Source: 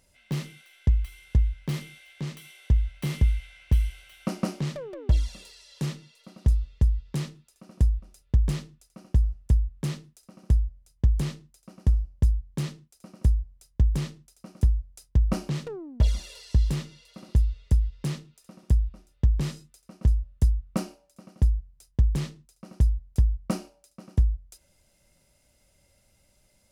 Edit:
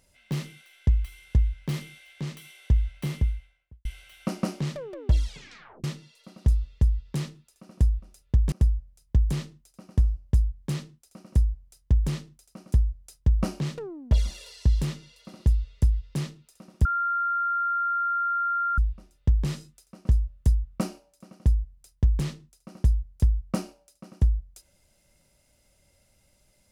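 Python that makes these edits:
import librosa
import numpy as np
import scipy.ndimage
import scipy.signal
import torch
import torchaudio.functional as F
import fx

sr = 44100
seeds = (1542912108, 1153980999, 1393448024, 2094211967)

y = fx.studio_fade_out(x, sr, start_s=2.87, length_s=0.98)
y = fx.edit(y, sr, fx.tape_stop(start_s=5.24, length_s=0.6),
    fx.cut(start_s=8.52, length_s=1.89),
    fx.insert_tone(at_s=18.74, length_s=1.93, hz=1390.0, db=-23.0), tone=tone)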